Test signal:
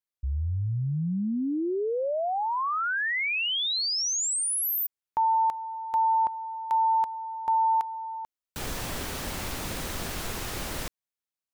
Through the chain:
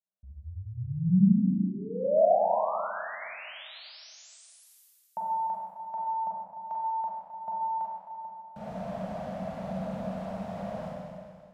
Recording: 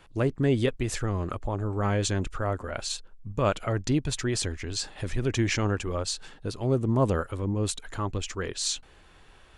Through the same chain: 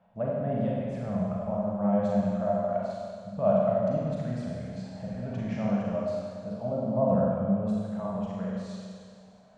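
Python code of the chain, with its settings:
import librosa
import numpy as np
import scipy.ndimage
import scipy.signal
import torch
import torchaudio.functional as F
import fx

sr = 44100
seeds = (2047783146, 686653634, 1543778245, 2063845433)

y = fx.double_bandpass(x, sr, hz=350.0, octaves=1.7)
y = fx.rev_schroeder(y, sr, rt60_s=2.1, comb_ms=33, drr_db=-5.0)
y = y * librosa.db_to_amplitude(5.0)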